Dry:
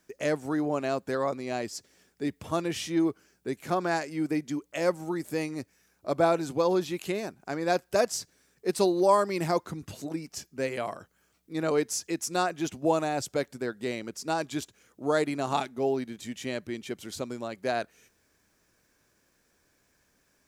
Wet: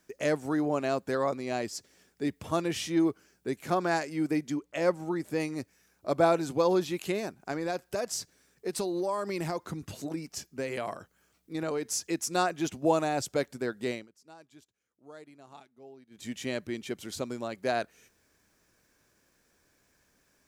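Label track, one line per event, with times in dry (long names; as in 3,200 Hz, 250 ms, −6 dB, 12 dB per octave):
4.540000	5.400000	high-shelf EQ 5,700 Hz −9 dB
7.510000	11.900000	downward compressor 5 to 1, threshold −28 dBFS
13.900000	16.280000	duck −23 dB, fades 0.18 s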